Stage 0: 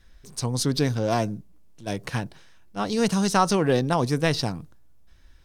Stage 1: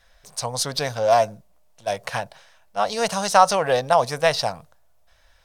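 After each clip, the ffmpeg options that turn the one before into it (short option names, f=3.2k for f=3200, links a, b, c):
-af "lowshelf=f=450:t=q:w=3:g=-10.5,volume=3.5dB"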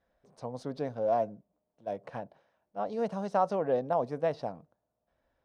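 -af "bandpass=f=290:t=q:w=1.8:csg=0"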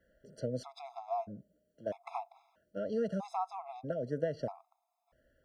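-filter_complex "[0:a]acrossover=split=100[a][b];[b]acompressor=threshold=-36dB:ratio=6[c];[a][c]amix=inputs=2:normalize=0,afftfilt=real='re*gt(sin(2*PI*0.78*pts/sr)*(1-2*mod(floor(b*sr/1024/680),2)),0)':imag='im*gt(sin(2*PI*0.78*pts/sr)*(1-2*mod(floor(b*sr/1024/680),2)),0)':win_size=1024:overlap=0.75,volume=6.5dB"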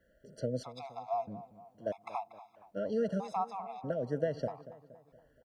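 -filter_complex "[0:a]asplit=2[a][b];[b]adelay=235,lowpass=f=2.8k:p=1,volume=-15.5dB,asplit=2[c][d];[d]adelay=235,lowpass=f=2.8k:p=1,volume=0.51,asplit=2[e][f];[f]adelay=235,lowpass=f=2.8k:p=1,volume=0.51,asplit=2[g][h];[h]adelay=235,lowpass=f=2.8k:p=1,volume=0.51,asplit=2[i][j];[j]adelay=235,lowpass=f=2.8k:p=1,volume=0.51[k];[a][c][e][g][i][k]amix=inputs=6:normalize=0,volume=1.5dB"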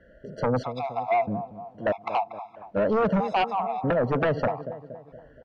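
-af "lowpass=2.6k,aeval=exprs='0.119*sin(PI/2*3.55*val(0)/0.119)':c=same"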